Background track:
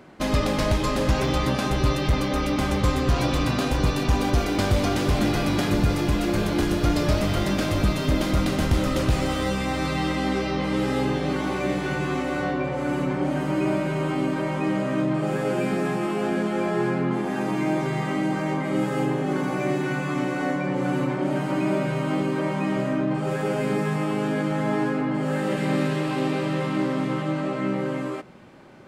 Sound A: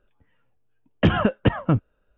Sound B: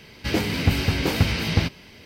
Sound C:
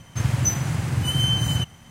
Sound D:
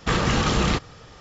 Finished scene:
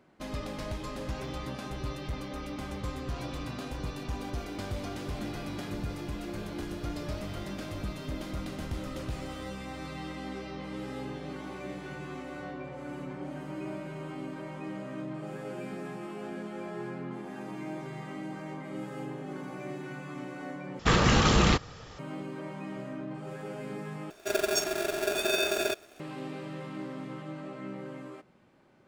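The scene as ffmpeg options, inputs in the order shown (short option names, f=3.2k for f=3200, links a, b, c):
-filter_complex "[0:a]volume=-14.5dB[a];[3:a]aeval=exprs='val(0)*sgn(sin(2*PI*510*n/s))':c=same[b];[a]asplit=3[c][d][e];[c]atrim=end=20.794[f];[4:a]atrim=end=1.2,asetpts=PTS-STARTPTS,volume=-1dB[g];[d]atrim=start=21.986:end=24.104[h];[b]atrim=end=1.9,asetpts=PTS-STARTPTS,volume=-7dB[i];[e]atrim=start=25.996[j];[f][g]acrossfade=d=0.004:c1=hsin:c2=hsin[k];[k][h]acrossfade=d=0.004:c1=hsin:c2=hsin[l];[l][i]acrossfade=d=0.004:c1=hsin:c2=hsin[m];[m][j]acrossfade=d=0.004:c1=hsin:c2=hsin"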